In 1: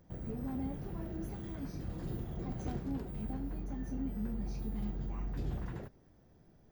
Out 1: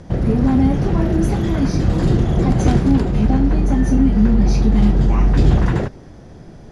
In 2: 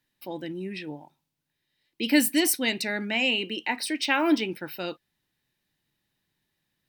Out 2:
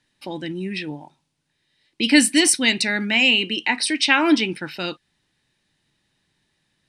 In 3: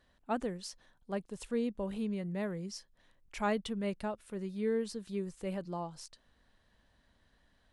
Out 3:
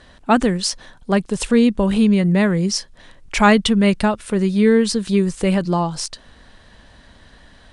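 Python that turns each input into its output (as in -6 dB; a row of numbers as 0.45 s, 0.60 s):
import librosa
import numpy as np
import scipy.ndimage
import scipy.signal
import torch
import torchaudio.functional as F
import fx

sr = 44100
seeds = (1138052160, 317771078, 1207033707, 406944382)

y = fx.dynamic_eq(x, sr, hz=550.0, q=0.94, threshold_db=-44.0, ratio=4.0, max_db=-7)
y = scipy.signal.sosfilt(scipy.signal.cheby1(4, 1.0, 9700.0, 'lowpass', fs=sr, output='sos'), y)
y = librosa.util.normalize(y) * 10.0 ** (-2 / 20.0)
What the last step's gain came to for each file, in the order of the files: +25.5 dB, +9.5 dB, +23.5 dB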